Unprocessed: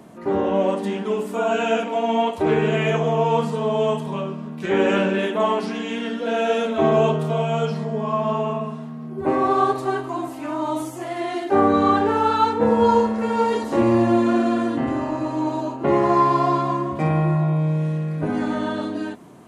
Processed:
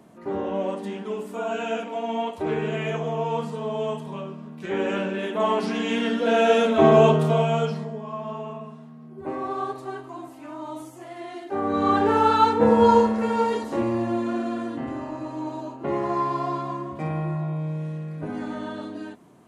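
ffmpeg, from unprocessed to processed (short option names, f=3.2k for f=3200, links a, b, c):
-af "volume=13.5dB,afade=t=in:st=5.2:d=0.73:silence=0.334965,afade=t=out:st=7.26:d=0.75:silence=0.223872,afade=t=in:st=11.62:d=0.53:silence=0.281838,afade=t=out:st=12.97:d=0.95:silence=0.375837"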